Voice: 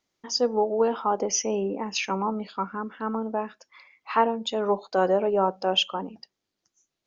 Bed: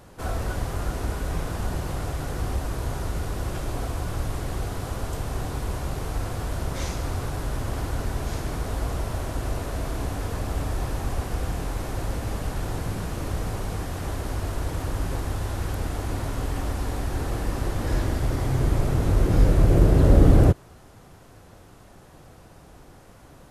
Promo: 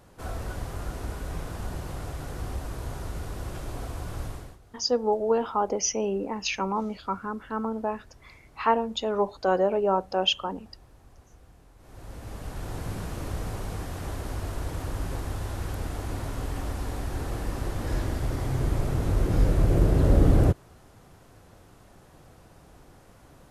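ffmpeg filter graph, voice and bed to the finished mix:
ffmpeg -i stem1.wav -i stem2.wav -filter_complex "[0:a]adelay=4500,volume=-1dB[link_01];[1:a]volume=16dB,afade=type=out:start_time=4.25:duration=0.33:silence=0.1,afade=type=in:start_time=11.78:duration=1.15:silence=0.0794328[link_02];[link_01][link_02]amix=inputs=2:normalize=0" out.wav

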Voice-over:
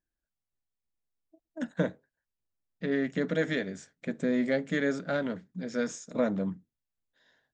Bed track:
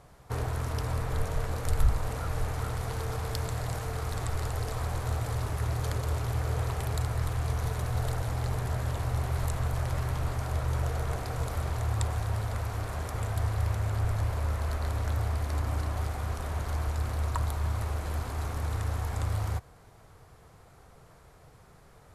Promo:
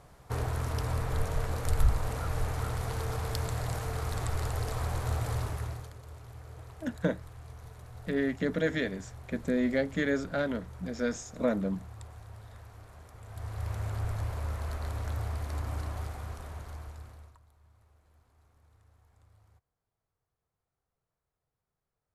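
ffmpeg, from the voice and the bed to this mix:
ffmpeg -i stem1.wav -i stem2.wav -filter_complex "[0:a]adelay=5250,volume=-0.5dB[link_01];[1:a]volume=12dB,afade=type=out:start_time=5.36:duration=0.54:silence=0.149624,afade=type=in:start_time=13.23:duration=0.58:silence=0.237137,afade=type=out:start_time=15.87:duration=1.52:silence=0.0398107[link_02];[link_01][link_02]amix=inputs=2:normalize=0" out.wav

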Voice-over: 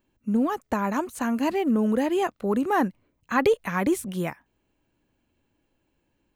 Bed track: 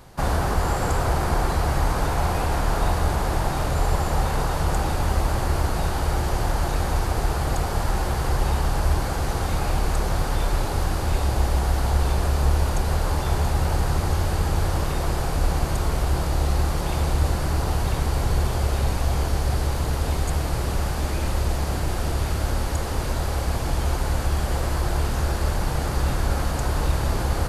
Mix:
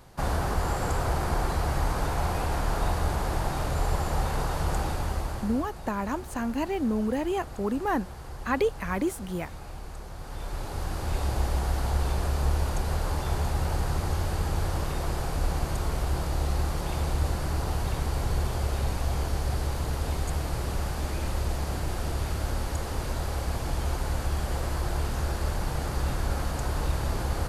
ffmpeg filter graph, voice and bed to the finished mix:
ffmpeg -i stem1.wav -i stem2.wav -filter_complex "[0:a]adelay=5150,volume=-4.5dB[link_01];[1:a]volume=7dB,afade=type=out:start_time=4.8:duration=0.91:silence=0.237137,afade=type=in:start_time=10.17:duration=1.09:silence=0.251189[link_02];[link_01][link_02]amix=inputs=2:normalize=0" out.wav

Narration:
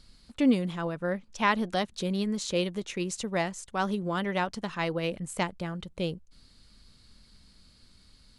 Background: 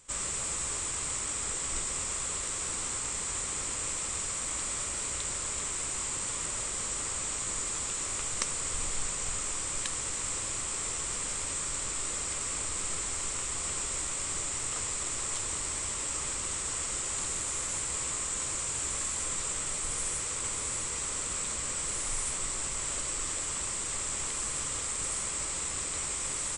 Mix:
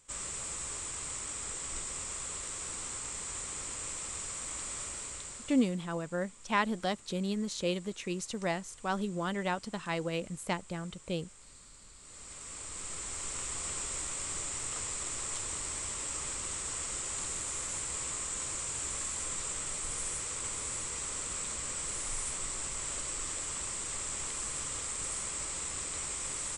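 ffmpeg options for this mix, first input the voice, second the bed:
ffmpeg -i stem1.wav -i stem2.wav -filter_complex "[0:a]adelay=5100,volume=-4dB[link_01];[1:a]volume=13dB,afade=type=out:start_time=4.86:duration=0.91:silence=0.149624,afade=type=in:start_time=11.98:duration=1.48:silence=0.11885[link_02];[link_01][link_02]amix=inputs=2:normalize=0" out.wav

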